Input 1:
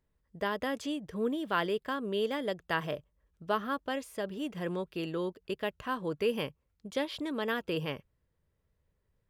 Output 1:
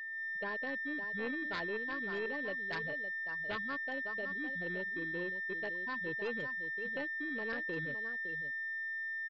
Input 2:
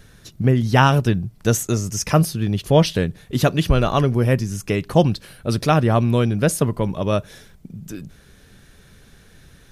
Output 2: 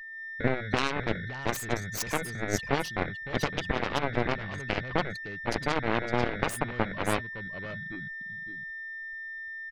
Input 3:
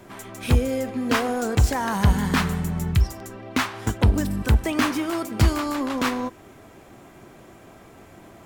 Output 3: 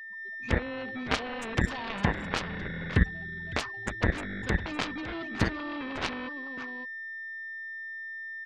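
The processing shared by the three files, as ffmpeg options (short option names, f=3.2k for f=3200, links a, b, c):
-filter_complex "[0:a]afftfilt=real='re*gte(hypot(re,im),0.0708)':imag='im*gte(hypot(re,im),0.0708)':win_size=1024:overlap=0.75,equalizer=f=12k:t=o:w=1.8:g=6,alimiter=limit=-11dB:level=0:latency=1:release=373,asplit=2[a][b];[b]aecho=0:1:560:0.316[c];[a][c]amix=inputs=2:normalize=0,aeval=exprs='val(0)+0.0316*sin(2*PI*1800*n/s)':c=same,dynaudnorm=f=120:g=3:m=4dB,aeval=exprs='0.596*(cos(1*acos(clip(val(0)/0.596,-1,1)))-cos(1*PI/2))+0.211*(cos(3*acos(clip(val(0)/0.596,-1,1)))-cos(3*PI/2))+0.0299*(cos(7*acos(clip(val(0)/0.596,-1,1)))-cos(7*PI/2))+0.00335*(cos(8*acos(clip(val(0)/0.596,-1,1)))-cos(8*PI/2))':c=same,volume=-2.5dB"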